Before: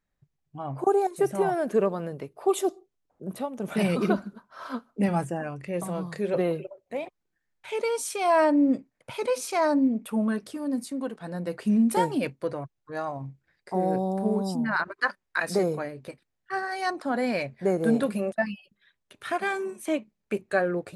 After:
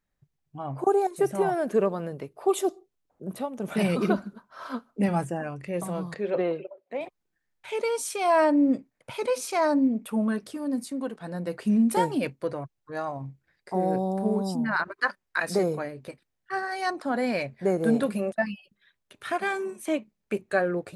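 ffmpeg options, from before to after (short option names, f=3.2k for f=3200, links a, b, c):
-filter_complex "[0:a]asettb=1/sr,asplit=3[a][b][c];[a]atrim=end=6.144[d];[b]atrim=start=6.14:end=7.01,asetpts=PTS-STARTPTS,afade=t=in:d=0.004:c=qsin,afade=t=out:st=0.866:d=0.004:c=qsin,highpass=240,lowpass=3.7k[e];[c]atrim=start=7.006[f];[d][e]acrossfade=d=0.004:c1=hsin:c2=qsin[g];[g][f]acrossfade=d=0.004:c1=qsin:c2=hsin"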